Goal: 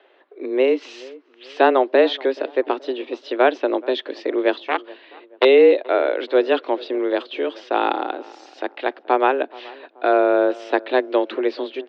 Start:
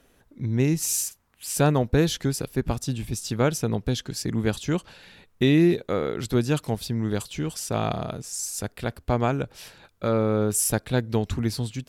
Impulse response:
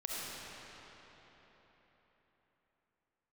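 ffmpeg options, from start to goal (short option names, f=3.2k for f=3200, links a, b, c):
-filter_complex "[0:a]asettb=1/sr,asplit=3[a][b][c];[a]atrim=end=4.604[d];[b]atrim=start=4.6:end=5.45,asetpts=PTS-STARTPTS,afade=t=in:d=0.004:c=qsin,afade=t=out:st=0.846:d=0.004:c=qsin,aeval=exprs='0.422*(cos(1*acos(clip(val(0)/0.422,-1,1)))-cos(1*PI/2))+0.0944*(cos(7*acos(clip(val(0)/0.422,-1,1)))-cos(7*PI/2))':c=same[e];[c]atrim=start=5.446[f];[d][e]acrossfade=d=0.004:c1=hsin:c2=qsin[g];[g][f]acrossfade=d=0.004:c1=qsin:c2=hsin,asplit=2[h][i];[i]adelay=428,lowpass=f=1.2k:p=1,volume=-21dB,asplit=2[j][k];[k]adelay=428,lowpass=f=1.2k:p=1,volume=0.44,asplit=2[l][m];[m]adelay=428,lowpass=f=1.2k:p=1,volume=0.44[n];[h][j][l][n]amix=inputs=4:normalize=0,highpass=f=200:t=q:w=0.5412,highpass=f=200:t=q:w=1.307,lowpass=f=3.5k:t=q:w=0.5176,lowpass=f=3.5k:t=q:w=0.7071,lowpass=f=3.5k:t=q:w=1.932,afreqshift=130,volume=7.5dB"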